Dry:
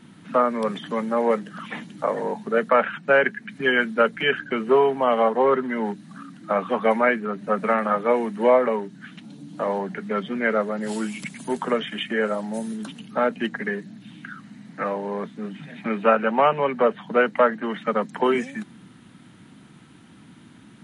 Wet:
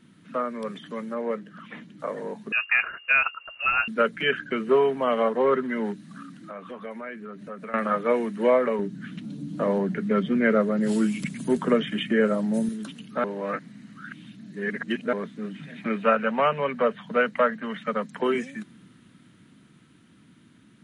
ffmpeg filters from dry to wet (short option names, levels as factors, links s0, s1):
-filter_complex "[0:a]asettb=1/sr,asplit=3[s0][s1][s2];[s0]atrim=end=1.144[s3];[s1]atrim=start=1.14:end=2,asetpts=PTS-STARTPTS,afade=t=in:d=0.004:c=qsin,afade=t=out:st=0.856:d=0.004:c=qsin,lowpass=f=3000:p=1[s4];[s2]atrim=start=1.996[s5];[s3][s4]acrossfade=d=0.004:c1=hsin:c2=qsin[s6];[s6][s5]acrossfade=d=0.004:c1=qsin:c2=hsin,asettb=1/sr,asplit=3[s7][s8][s9];[s7]atrim=end=2.524[s10];[s8]atrim=start=2.52:end=3.88,asetpts=PTS-STARTPTS,afade=t=in:d=0.004:c=qsin,afade=t=out:st=1.356:d=0.004:c=qsin,lowpass=f=2600:t=q:w=0.5098,lowpass=f=2600:t=q:w=0.6013,lowpass=f=2600:t=q:w=0.9,lowpass=f=2600:t=q:w=2.563,afreqshift=-3000[s11];[s9]atrim=start=3.876[s12];[s10][s11]acrossfade=d=0.004:c1=hsin:c2=qsin[s13];[s13][s12]acrossfade=d=0.004:c1=qsin:c2=hsin,asettb=1/sr,asplit=3[s14][s15][s16];[s14]atrim=end=6.324[s17];[s15]atrim=start=6.32:end=7.74,asetpts=PTS-STARTPTS,afade=t=in:d=0.004:c=qsin,afade=t=out:st=1.416:d=0.004:c=qsin,acompressor=threshold=0.0126:ratio=2.5:attack=3.2:release=140:knee=1:detection=peak[s18];[s16]atrim=start=7.736[s19];[s17][s18]acrossfade=d=0.004:c1=hsin:c2=qsin[s20];[s20][s19]acrossfade=d=0.004:c1=qsin:c2=hsin,asettb=1/sr,asplit=3[s21][s22][s23];[s21]atrim=end=8.794[s24];[s22]atrim=start=8.79:end=12.69,asetpts=PTS-STARTPTS,afade=t=in:d=0.004:c=qsin,afade=t=out:st=3.896:d=0.004:c=qsin,lowshelf=f=410:g=10[s25];[s23]atrim=start=12.686[s26];[s24][s25]acrossfade=d=0.004:c1=hsin:c2=qsin[s27];[s27][s26]acrossfade=d=0.004:c1=qsin:c2=hsin,asettb=1/sr,asplit=3[s28][s29][s30];[s28]atrim=end=15.964[s31];[s29]atrim=start=15.96:end=18.2,asetpts=PTS-STARTPTS,afade=t=in:d=0.004:c=qsin,afade=t=out:st=2.236:d=0.004:c=qsin,equalizer=f=340:w=4.4:g=-13.5[s32];[s30]atrim=start=18.196[s33];[s31][s32]acrossfade=d=0.004:c1=hsin:c2=qsin[s34];[s34][s33]acrossfade=d=0.004:c1=qsin:c2=hsin,asplit=3[s35][s36][s37];[s35]atrim=end=13.242[s38];[s36]atrim=start=13.238:end=15.132,asetpts=PTS-STARTPTS,areverse[s39];[s37]atrim=start=15.128[s40];[s38][s39]acrossfade=d=0.004:c1=hsin:c2=hsin[s41];[s41][s40]acrossfade=d=0.004:c1=hsin:c2=hsin,equalizer=f=820:t=o:w=0.45:g=-9,dynaudnorm=f=550:g=11:m=3.76,volume=0.447"